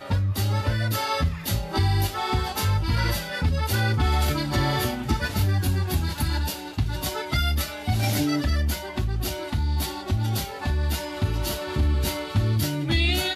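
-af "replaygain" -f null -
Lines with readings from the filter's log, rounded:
track_gain = +8.2 dB
track_peak = 0.193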